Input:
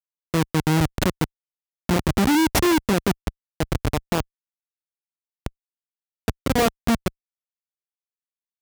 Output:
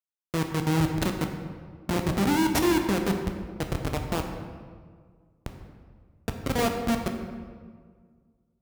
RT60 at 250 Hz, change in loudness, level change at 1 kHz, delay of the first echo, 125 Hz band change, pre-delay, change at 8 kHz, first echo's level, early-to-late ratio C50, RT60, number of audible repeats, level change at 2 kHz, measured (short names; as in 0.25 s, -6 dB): 2.0 s, -5.0 dB, -4.5 dB, none, -4.5 dB, 8 ms, -5.5 dB, none, 5.5 dB, 1.8 s, none, -5.0 dB